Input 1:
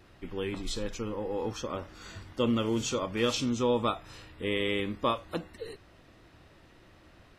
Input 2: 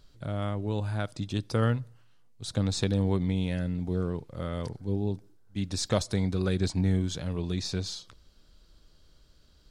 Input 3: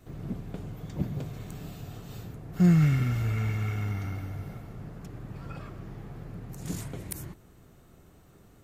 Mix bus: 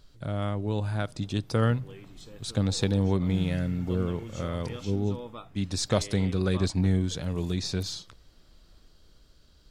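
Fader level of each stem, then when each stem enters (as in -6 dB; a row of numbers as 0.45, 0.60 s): -14.0, +1.5, -15.0 dB; 1.50, 0.00, 0.70 s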